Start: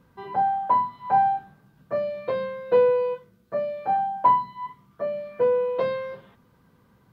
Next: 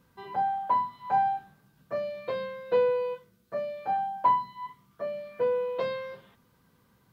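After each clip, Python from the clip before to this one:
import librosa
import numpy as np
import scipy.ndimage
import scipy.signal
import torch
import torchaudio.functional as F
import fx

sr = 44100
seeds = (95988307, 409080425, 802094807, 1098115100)

y = fx.high_shelf(x, sr, hz=2500.0, db=9.5)
y = y * 10.0 ** (-6.0 / 20.0)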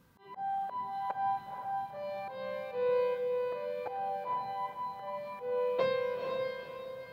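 y = fx.auto_swell(x, sr, attack_ms=276.0)
y = fx.echo_diffused(y, sr, ms=493, feedback_pct=42, wet_db=-3.5)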